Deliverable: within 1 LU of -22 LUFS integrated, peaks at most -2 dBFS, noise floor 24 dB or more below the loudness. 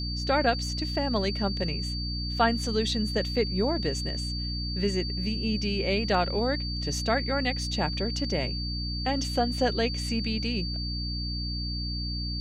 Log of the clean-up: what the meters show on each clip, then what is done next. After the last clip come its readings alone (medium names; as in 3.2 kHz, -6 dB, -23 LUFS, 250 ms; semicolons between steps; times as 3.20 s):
hum 60 Hz; highest harmonic 300 Hz; hum level -30 dBFS; steady tone 4.6 kHz; tone level -34 dBFS; loudness -28.0 LUFS; peak level -10.0 dBFS; loudness target -22.0 LUFS
-> de-hum 60 Hz, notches 5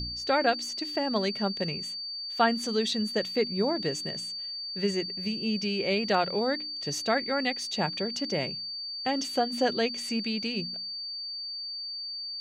hum not found; steady tone 4.6 kHz; tone level -34 dBFS
-> band-stop 4.6 kHz, Q 30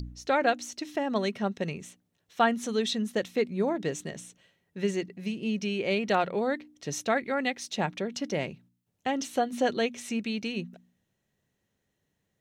steady tone not found; loudness -30.0 LUFS; peak level -10.5 dBFS; loudness target -22.0 LUFS
-> trim +8 dB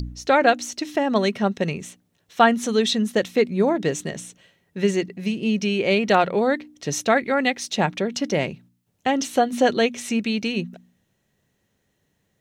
loudness -22.0 LUFS; peak level -2.5 dBFS; noise floor -71 dBFS